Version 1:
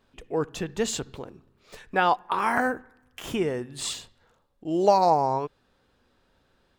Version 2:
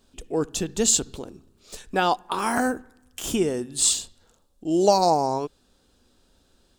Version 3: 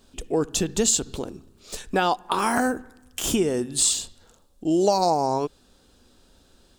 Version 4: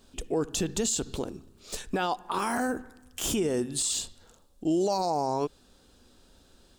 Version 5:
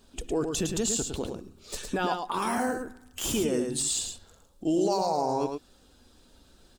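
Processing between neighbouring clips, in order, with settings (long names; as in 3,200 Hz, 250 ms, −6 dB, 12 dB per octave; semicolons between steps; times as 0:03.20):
octave-band graphic EQ 125/500/1,000/2,000/8,000 Hz −9/−5/−7/−11/+7 dB; level +8 dB
downward compressor 2.5 to 1, threshold −25 dBFS, peak gain reduction 8.5 dB; level +5 dB
brickwall limiter −17.5 dBFS, peak gain reduction 10 dB; level −1.5 dB
spectral magnitudes quantised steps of 15 dB; single-tap delay 108 ms −5.5 dB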